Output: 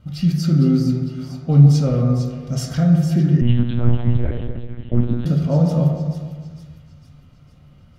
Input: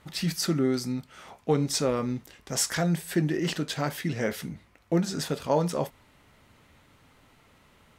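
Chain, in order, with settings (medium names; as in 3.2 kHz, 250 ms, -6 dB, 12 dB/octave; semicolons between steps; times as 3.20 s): two-band feedback delay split 1.7 kHz, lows 153 ms, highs 454 ms, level -9 dB; reverberation RT60 1.2 s, pre-delay 3 ms, DRR 0 dB; 3.41–5.26 s: monotone LPC vocoder at 8 kHz 120 Hz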